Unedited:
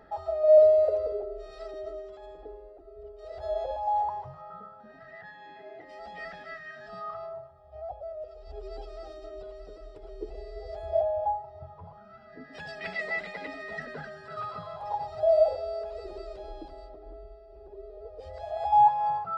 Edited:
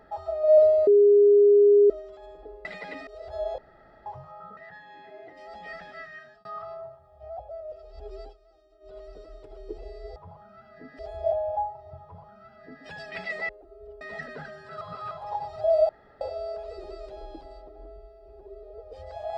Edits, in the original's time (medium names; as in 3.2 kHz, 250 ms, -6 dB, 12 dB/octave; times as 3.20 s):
0.87–1.90 s: bleep 409 Hz -13 dBFS
2.65–3.17 s: swap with 13.18–13.60 s
3.68–4.16 s: room tone
4.67–5.09 s: delete
6.66–6.97 s: fade out
8.71–9.50 s: dip -18 dB, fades 0.18 s
11.72–12.55 s: copy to 10.68 s
14.40–14.70 s: reverse
15.48 s: insert room tone 0.32 s